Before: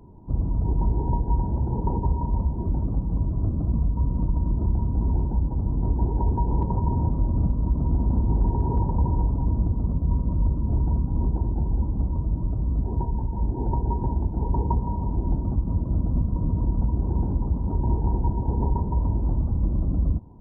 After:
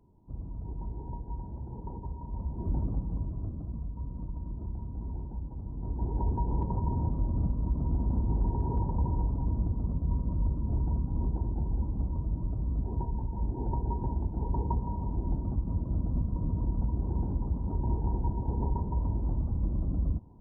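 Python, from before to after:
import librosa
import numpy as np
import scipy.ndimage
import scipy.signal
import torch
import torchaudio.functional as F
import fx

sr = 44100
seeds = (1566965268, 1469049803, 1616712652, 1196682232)

y = fx.gain(x, sr, db=fx.line((2.23, -15.0), (2.76, -4.5), (3.72, -14.0), (5.73, -14.0), (6.16, -6.5)))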